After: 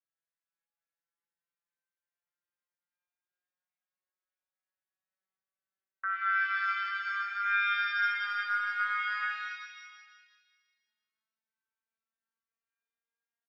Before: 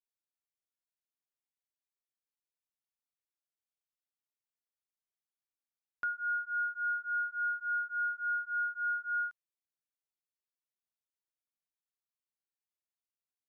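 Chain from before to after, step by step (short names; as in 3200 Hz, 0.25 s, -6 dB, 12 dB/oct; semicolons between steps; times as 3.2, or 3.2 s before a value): vocoder on a gliding note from E3, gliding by +6 st; band-pass 1400 Hz, Q 0.55; bell 1600 Hz +11.5 dB 0.59 oct; comb 3.7 ms, depth 33%; dynamic EQ 1000 Hz, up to -6 dB, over -41 dBFS, Q 2.2; limiter -25.5 dBFS, peak gain reduction 7 dB; echo 0.702 s -23.5 dB; shimmer reverb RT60 1.5 s, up +7 st, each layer -8 dB, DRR 0.5 dB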